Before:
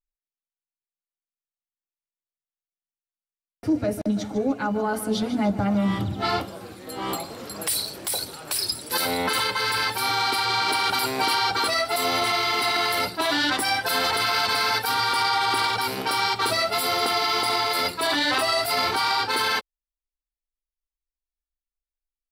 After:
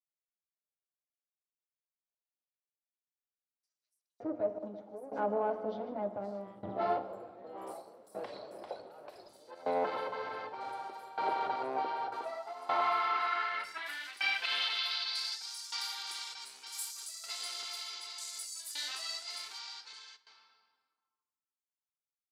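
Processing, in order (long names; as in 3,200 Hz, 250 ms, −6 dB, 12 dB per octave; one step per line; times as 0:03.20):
harmonic generator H 6 −20 dB, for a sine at −11.5 dBFS
on a send at −10 dB: convolution reverb RT60 2.2 s, pre-delay 3 ms
on the sum: shaped tremolo saw down 0.66 Hz, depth 90%
multiband delay without the direct sound highs, lows 570 ms, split 5,800 Hz
band-pass filter sweep 600 Hz → 7,100 Hz, 0:12.01–0:15.92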